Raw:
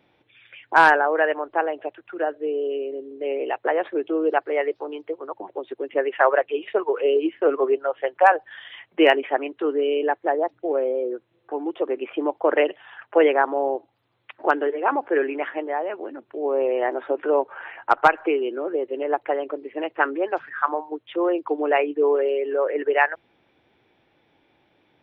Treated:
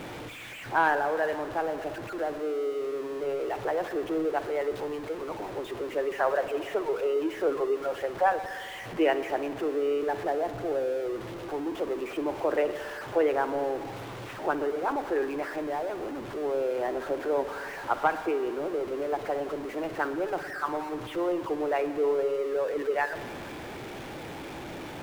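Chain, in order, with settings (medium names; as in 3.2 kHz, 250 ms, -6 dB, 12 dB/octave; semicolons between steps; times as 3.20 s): jump at every zero crossing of -23.5 dBFS; treble shelf 2.4 kHz -10.5 dB; reverberation RT60 2.2 s, pre-delay 56 ms, DRR 11 dB; trim -8.5 dB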